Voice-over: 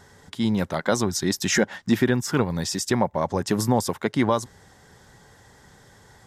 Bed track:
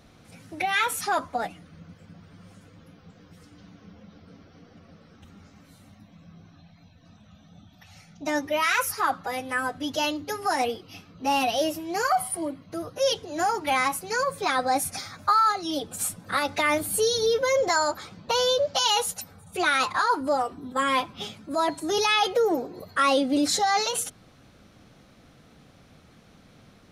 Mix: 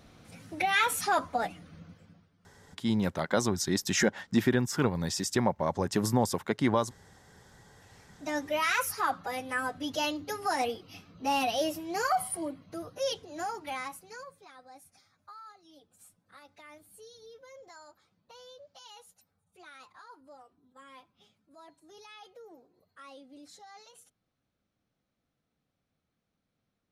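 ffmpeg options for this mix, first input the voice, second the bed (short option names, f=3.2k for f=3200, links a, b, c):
-filter_complex "[0:a]adelay=2450,volume=-5dB[a];[1:a]volume=14dB,afade=t=out:st=1.74:d=0.57:silence=0.11885,afade=t=in:st=7.67:d=0.85:silence=0.16788,afade=t=out:st=12.31:d=2.16:silence=0.0630957[b];[a][b]amix=inputs=2:normalize=0"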